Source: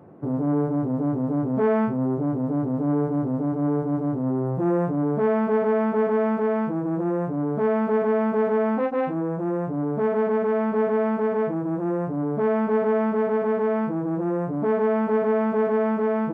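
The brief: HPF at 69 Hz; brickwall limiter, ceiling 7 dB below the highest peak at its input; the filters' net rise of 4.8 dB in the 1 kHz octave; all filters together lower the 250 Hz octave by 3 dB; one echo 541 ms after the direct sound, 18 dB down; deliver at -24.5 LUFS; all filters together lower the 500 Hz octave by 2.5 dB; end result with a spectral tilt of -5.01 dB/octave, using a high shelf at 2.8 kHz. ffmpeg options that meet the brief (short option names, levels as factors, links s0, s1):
-af "highpass=69,equalizer=f=250:t=o:g=-3,equalizer=f=500:t=o:g=-4,equalizer=f=1000:t=o:g=8,highshelf=f=2800:g=-5.5,alimiter=limit=0.106:level=0:latency=1,aecho=1:1:541:0.126,volume=1.41"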